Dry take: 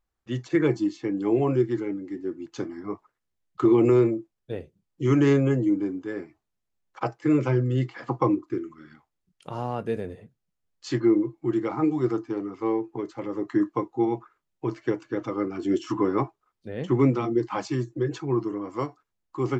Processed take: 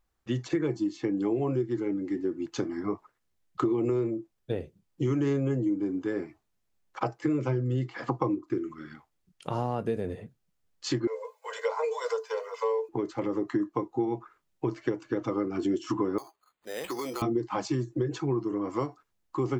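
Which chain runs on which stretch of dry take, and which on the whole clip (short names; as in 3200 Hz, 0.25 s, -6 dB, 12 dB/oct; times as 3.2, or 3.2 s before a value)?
11.07–12.89 Chebyshev high-pass 440 Hz, order 10 + high shelf 4600 Hz +10 dB + comb 2 ms, depth 97%
16.18–17.22 HPF 610 Hz + compressor 12:1, threshold -34 dBFS + careless resampling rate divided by 8×, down none, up hold
whole clip: dynamic EQ 2000 Hz, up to -4 dB, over -41 dBFS, Q 0.74; compressor 5:1, threshold -30 dBFS; gain +4.5 dB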